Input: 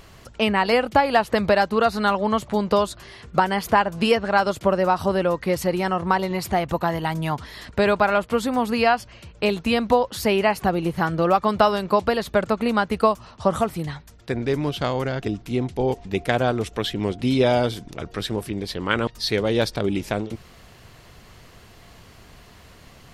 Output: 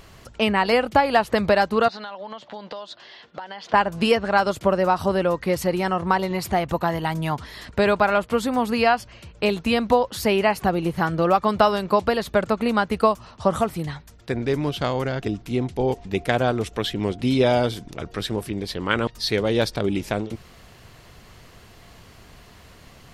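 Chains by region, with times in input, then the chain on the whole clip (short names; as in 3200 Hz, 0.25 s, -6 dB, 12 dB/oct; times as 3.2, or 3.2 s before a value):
1.88–3.74 speaker cabinet 400–5000 Hz, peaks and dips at 400 Hz -7 dB, 1200 Hz -6 dB, 2300 Hz -5 dB, 3300 Hz +4 dB + compressor, threshold -31 dBFS
whole clip: dry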